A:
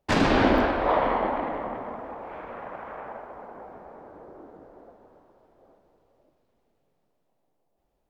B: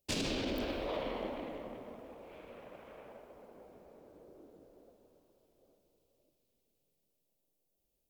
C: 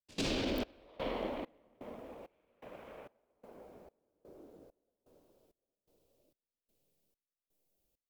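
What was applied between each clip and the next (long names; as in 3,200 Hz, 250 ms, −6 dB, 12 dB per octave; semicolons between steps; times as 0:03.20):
flat-topped bell 1,200 Hz −11 dB; brickwall limiter −18.5 dBFS, peak gain reduction 9.5 dB; first-order pre-emphasis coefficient 0.8; level +4 dB
gate pattern "..xxxxx.." 166 BPM −24 dB; level +1.5 dB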